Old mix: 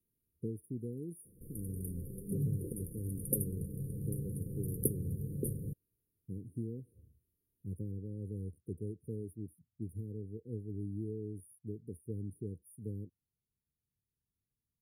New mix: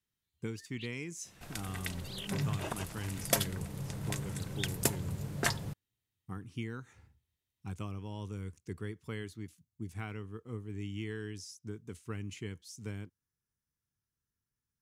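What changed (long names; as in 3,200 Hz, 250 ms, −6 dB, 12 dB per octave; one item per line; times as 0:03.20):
first sound −10.0 dB
master: remove linear-phase brick-wall band-stop 530–9,100 Hz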